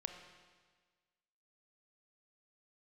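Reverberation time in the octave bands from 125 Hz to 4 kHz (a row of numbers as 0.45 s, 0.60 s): 1.5 s, 1.5 s, 1.5 s, 1.5 s, 1.5 s, 1.5 s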